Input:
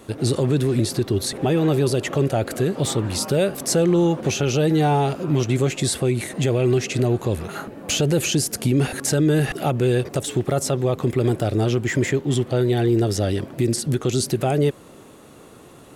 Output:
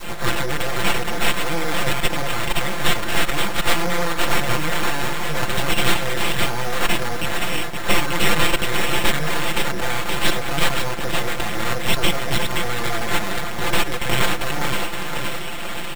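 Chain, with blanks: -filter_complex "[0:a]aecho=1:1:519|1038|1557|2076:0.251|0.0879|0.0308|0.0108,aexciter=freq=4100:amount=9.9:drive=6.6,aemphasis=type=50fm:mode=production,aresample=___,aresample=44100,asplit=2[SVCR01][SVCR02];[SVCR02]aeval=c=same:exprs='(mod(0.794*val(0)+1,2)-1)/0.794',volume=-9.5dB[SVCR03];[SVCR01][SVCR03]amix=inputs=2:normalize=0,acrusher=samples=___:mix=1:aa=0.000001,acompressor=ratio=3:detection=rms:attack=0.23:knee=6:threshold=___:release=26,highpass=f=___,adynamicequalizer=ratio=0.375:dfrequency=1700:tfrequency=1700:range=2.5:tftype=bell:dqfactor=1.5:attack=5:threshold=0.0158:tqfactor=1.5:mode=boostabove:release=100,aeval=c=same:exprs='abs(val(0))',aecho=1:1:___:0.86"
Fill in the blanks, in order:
16000, 8, -21dB, 96, 5.8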